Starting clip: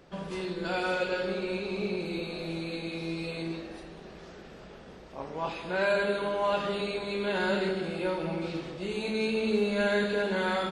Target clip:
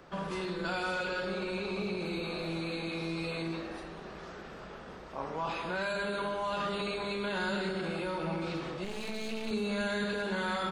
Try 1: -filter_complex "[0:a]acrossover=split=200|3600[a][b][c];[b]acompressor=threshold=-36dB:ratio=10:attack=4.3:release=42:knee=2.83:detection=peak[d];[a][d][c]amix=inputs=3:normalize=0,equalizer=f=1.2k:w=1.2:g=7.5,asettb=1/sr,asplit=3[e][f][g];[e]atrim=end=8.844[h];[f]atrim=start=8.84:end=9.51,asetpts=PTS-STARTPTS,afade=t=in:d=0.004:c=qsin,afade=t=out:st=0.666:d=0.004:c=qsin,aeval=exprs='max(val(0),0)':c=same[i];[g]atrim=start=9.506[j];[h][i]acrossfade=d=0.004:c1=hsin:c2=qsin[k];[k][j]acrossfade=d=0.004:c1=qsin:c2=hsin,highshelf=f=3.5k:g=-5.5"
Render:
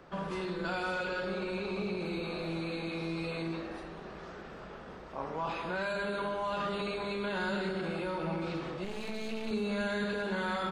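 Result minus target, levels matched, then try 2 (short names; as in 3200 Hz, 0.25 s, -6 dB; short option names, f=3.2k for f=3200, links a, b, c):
8000 Hz band -4.0 dB
-filter_complex "[0:a]acrossover=split=200|3600[a][b][c];[b]acompressor=threshold=-36dB:ratio=10:attack=4.3:release=42:knee=2.83:detection=peak[d];[a][d][c]amix=inputs=3:normalize=0,equalizer=f=1.2k:w=1.2:g=7.5,asettb=1/sr,asplit=3[e][f][g];[e]atrim=end=8.844[h];[f]atrim=start=8.84:end=9.51,asetpts=PTS-STARTPTS,afade=t=in:d=0.004:c=qsin,afade=t=out:st=0.666:d=0.004:c=qsin,aeval=exprs='max(val(0),0)':c=same[i];[g]atrim=start=9.506[j];[h][i]acrossfade=d=0.004:c1=hsin:c2=qsin[k];[k][j]acrossfade=d=0.004:c1=qsin:c2=hsin"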